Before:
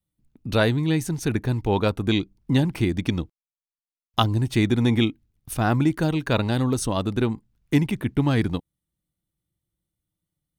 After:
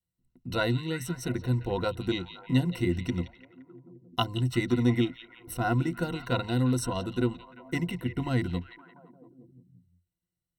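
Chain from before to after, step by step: rippled EQ curve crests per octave 2, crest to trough 16 dB; repeats whose band climbs or falls 173 ms, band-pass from 3.2 kHz, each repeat -0.7 oct, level -9 dB; trim -9 dB

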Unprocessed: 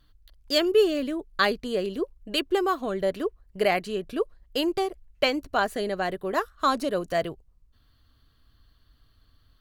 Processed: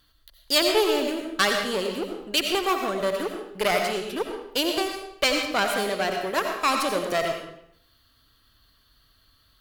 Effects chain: one-sided clip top -27.5 dBFS; tilt EQ +2 dB/octave; reverberation RT60 0.75 s, pre-delay 50 ms, DRR 3 dB; trim +2.5 dB

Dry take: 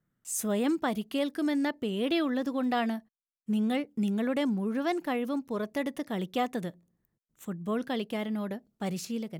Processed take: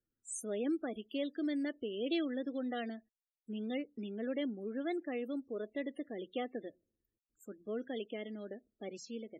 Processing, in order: loudest bins only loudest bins 32; static phaser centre 400 Hz, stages 4; trim -5 dB

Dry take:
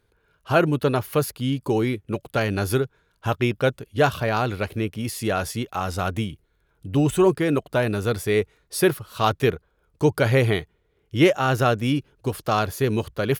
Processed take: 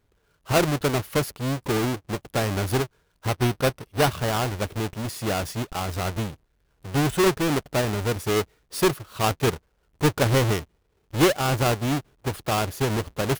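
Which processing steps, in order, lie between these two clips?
square wave that keeps the level; 3.29–4.11 s: band-stop 7 kHz, Q 7.6; trim -6 dB

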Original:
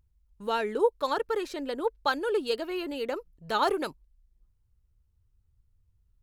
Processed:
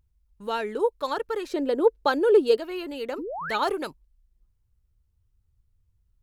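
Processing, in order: 1.52–2.57 s: peaking EQ 390 Hz +10.5 dB 1.7 oct; 3.18–3.56 s: painted sound rise 250–2600 Hz -33 dBFS

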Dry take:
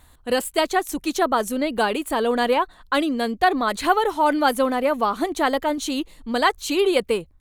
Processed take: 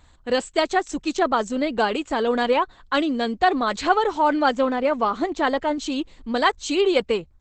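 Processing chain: 4.20–6.37 s: treble shelf 7.5 kHz -8 dB; Opus 12 kbps 48 kHz

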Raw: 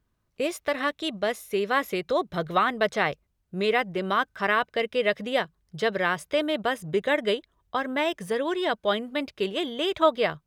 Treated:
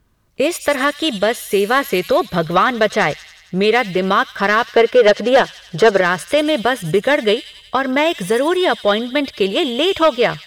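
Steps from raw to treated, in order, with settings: 4.76–6.01 s: high-order bell 720 Hz +8.5 dB 2.8 oct; in parallel at +1 dB: compression, threshold -28 dBFS, peak gain reduction 16 dB; on the sum: sine folder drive 6 dB, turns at -2 dBFS; feedback echo behind a high-pass 90 ms, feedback 66%, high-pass 4.4 kHz, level -5.5 dB; trim -3 dB

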